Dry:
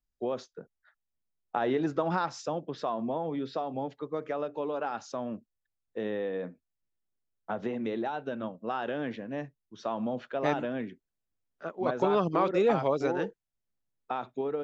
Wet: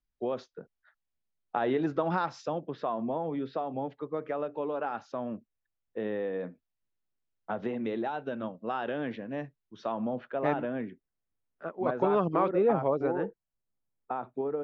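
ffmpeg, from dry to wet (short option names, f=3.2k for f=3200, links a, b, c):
-af "asetnsamples=n=441:p=0,asendcmd='2.58 lowpass f 2800;6.41 lowpass f 4200;9.92 lowpass f 2200;12.51 lowpass f 1400',lowpass=4.2k"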